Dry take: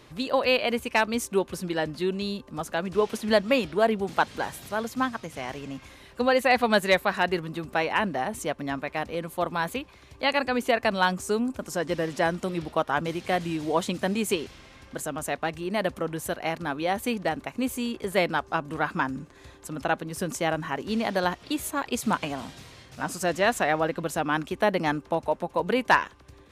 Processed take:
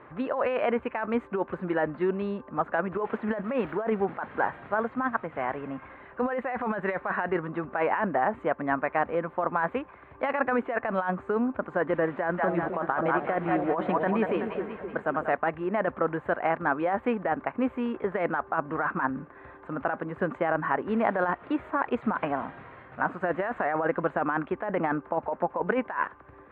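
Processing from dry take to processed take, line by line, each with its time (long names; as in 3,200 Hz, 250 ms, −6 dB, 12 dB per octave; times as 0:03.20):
0:03.44–0:04.05: spike at every zero crossing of −25.5 dBFS
0:12.18–0:15.34: echo with a time of its own for lows and highs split 590 Hz, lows 259 ms, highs 188 ms, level −8 dB
whole clip: inverse Chebyshev low-pass filter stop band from 5,100 Hz, stop band 60 dB; spectral tilt +3.5 dB per octave; compressor whose output falls as the input rises −30 dBFS, ratio −1; level +4.5 dB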